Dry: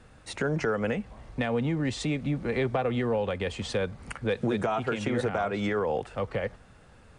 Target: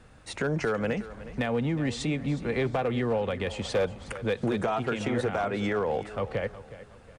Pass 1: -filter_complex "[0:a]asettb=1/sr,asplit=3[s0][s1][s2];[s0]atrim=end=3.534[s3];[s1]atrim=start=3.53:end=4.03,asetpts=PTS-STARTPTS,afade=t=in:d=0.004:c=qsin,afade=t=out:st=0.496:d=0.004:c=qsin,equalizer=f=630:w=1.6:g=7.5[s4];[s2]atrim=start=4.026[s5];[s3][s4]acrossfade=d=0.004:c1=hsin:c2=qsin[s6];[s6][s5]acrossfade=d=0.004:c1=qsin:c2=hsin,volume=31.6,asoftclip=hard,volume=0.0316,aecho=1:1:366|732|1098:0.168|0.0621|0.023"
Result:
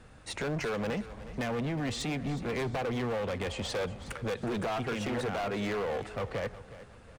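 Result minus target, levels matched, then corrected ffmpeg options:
overload inside the chain: distortion +14 dB
-filter_complex "[0:a]asettb=1/sr,asplit=3[s0][s1][s2];[s0]atrim=end=3.534[s3];[s1]atrim=start=3.53:end=4.03,asetpts=PTS-STARTPTS,afade=t=in:d=0.004:c=qsin,afade=t=out:st=0.496:d=0.004:c=qsin,equalizer=f=630:w=1.6:g=7.5[s4];[s2]atrim=start=4.026[s5];[s3][s4]acrossfade=d=0.004:c1=hsin:c2=qsin[s6];[s6][s5]acrossfade=d=0.004:c1=qsin:c2=hsin,volume=10.6,asoftclip=hard,volume=0.0944,aecho=1:1:366|732|1098:0.168|0.0621|0.023"

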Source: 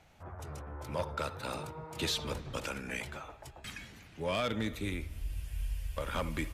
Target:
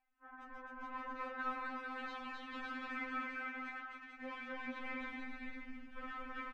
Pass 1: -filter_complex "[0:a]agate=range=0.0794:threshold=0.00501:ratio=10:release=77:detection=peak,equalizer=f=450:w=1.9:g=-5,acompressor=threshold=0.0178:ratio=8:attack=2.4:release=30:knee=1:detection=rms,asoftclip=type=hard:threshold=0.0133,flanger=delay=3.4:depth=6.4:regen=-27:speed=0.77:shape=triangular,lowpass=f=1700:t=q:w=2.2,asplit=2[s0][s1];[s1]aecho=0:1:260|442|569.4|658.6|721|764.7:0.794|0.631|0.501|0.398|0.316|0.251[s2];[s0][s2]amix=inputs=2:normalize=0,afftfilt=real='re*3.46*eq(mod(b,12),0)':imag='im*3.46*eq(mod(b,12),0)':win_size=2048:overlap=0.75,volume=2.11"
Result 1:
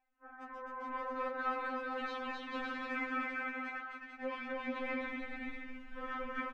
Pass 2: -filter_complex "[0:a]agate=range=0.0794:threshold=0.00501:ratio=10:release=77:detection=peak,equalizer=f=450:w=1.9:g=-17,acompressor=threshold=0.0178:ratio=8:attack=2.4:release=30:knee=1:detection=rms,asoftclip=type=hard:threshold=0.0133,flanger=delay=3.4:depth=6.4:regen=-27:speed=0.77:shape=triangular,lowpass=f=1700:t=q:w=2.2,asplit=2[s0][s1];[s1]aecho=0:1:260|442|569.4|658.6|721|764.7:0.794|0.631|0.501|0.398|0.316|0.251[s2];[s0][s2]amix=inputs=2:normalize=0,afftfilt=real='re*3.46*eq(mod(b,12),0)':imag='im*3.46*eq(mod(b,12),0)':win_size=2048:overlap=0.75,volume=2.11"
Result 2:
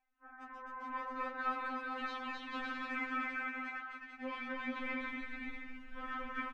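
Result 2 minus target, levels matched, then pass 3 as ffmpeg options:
hard clipper: distortion -7 dB
-filter_complex "[0:a]agate=range=0.0794:threshold=0.00501:ratio=10:release=77:detection=peak,equalizer=f=450:w=1.9:g=-17,acompressor=threshold=0.0178:ratio=8:attack=2.4:release=30:knee=1:detection=rms,asoftclip=type=hard:threshold=0.00596,flanger=delay=3.4:depth=6.4:regen=-27:speed=0.77:shape=triangular,lowpass=f=1700:t=q:w=2.2,asplit=2[s0][s1];[s1]aecho=0:1:260|442|569.4|658.6|721|764.7:0.794|0.631|0.501|0.398|0.316|0.251[s2];[s0][s2]amix=inputs=2:normalize=0,afftfilt=real='re*3.46*eq(mod(b,12),0)':imag='im*3.46*eq(mod(b,12),0)':win_size=2048:overlap=0.75,volume=2.11"

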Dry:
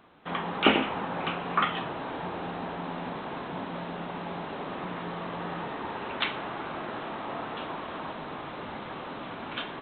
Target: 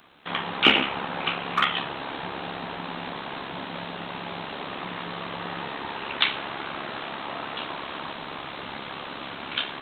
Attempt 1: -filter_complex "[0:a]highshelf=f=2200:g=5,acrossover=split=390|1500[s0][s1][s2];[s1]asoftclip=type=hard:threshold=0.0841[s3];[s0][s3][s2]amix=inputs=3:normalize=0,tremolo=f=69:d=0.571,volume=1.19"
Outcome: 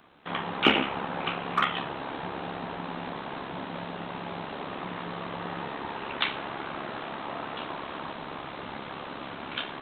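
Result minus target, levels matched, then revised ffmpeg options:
4 kHz band -3.0 dB
-filter_complex "[0:a]highshelf=f=2200:g=15,acrossover=split=390|1500[s0][s1][s2];[s1]asoftclip=type=hard:threshold=0.0841[s3];[s0][s3][s2]amix=inputs=3:normalize=0,tremolo=f=69:d=0.571,volume=1.19"

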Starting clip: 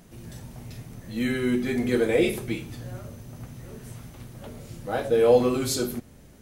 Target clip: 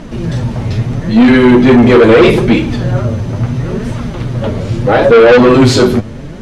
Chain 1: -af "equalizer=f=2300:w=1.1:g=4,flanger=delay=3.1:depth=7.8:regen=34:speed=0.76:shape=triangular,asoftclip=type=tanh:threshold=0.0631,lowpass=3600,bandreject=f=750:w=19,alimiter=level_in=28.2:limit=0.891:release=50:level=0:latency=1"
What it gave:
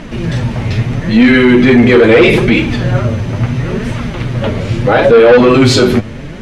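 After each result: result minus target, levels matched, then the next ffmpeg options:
2 kHz band +3.0 dB; saturation: distortion -4 dB
-af "equalizer=f=2300:w=1.1:g=-3,flanger=delay=3.1:depth=7.8:regen=34:speed=0.76:shape=triangular,asoftclip=type=tanh:threshold=0.0631,lowpass=3600,bandreject=f=750:w=19,alimiter=level_in=28.2:limit=0.891:release=50:level=0:latency=1"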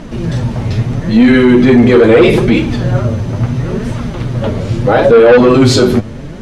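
saturation: distortion -4 dB
-af "equalizer=f=2300:w=1.1:g=-3,flanger=delay=3.1:depth=7.8:regen=34:speed=0.76:shape=triangular,asoftclip=type=tanh:threshold=0.0299,lowpass=3600,bandreject=f=750:w=19,alimiter=level_in=28.2:limit=0.891:release=50:level=0:latency=1"

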